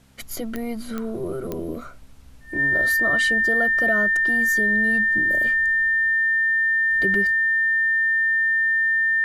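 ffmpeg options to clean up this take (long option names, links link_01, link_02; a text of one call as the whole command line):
ffmpeg -i in.wav -af "adeclick=threshold=4,bandreject=frequency=65.4:width_type=h:width=4,bandreject=frequency=130.8:width_type=h:width=4,bandreject=frequency=196.2:width_type=h:width=4,bandreject=frequency=261.6:width_type=h:width=4,bandreject=frequency=1800:width=30,agate=range=-21dB:threshold=-29dB" out.wav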